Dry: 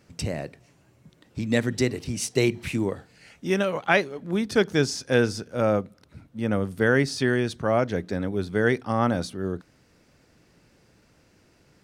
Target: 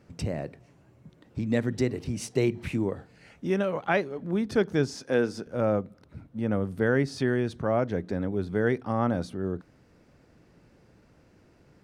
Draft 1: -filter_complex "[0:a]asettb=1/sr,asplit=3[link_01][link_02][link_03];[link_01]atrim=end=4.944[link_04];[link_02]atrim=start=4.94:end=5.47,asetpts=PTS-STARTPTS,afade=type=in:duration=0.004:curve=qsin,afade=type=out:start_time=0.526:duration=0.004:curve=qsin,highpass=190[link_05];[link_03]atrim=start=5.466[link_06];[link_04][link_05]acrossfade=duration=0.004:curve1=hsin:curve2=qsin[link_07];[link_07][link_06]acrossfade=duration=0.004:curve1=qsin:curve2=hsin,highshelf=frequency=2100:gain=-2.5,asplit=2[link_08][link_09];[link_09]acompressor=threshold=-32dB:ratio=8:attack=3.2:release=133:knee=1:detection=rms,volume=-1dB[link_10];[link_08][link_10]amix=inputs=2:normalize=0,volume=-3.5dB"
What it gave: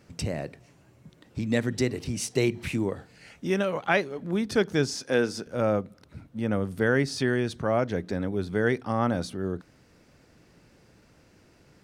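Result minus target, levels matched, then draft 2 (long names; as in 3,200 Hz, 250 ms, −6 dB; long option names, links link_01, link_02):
4,000 Hz band +5.5 dB
-filter_complex "[0:a]asettb=1/sr,asplit=3[link_01][link_02][link_03];[link_01]atrim=end=4.944[link_04];[link_02]atrim=start=4.94:end=5.47,asetpts=PTS-STARTPTS,afade=type=in:duration=0.004:curve=qsin,afade=type=out:start_time=0.526:duration=0.004:curve=qsin,highpass=190[link_05];[link_03]atrim=start=5.466[link_06];[link_04][link_05]acrossfade=duration=0.004:curve1=hsin:curve2=qsin[link_07];[link_07][link_06]acrossfade=duration=0.004:curve1=qsin:curve2=hsin,highshelf=frequency=2100:gain=-11,asplit=2[link_08][link_09];[link_09]acompressor=threshold=-32dB:ratio=8:attack=3.2:release=133:knee=1:detection=rms,volume=-1dB[link_10];[link_08][link_10]amix=inputs=2:normalize=0,volume=-3.5dB"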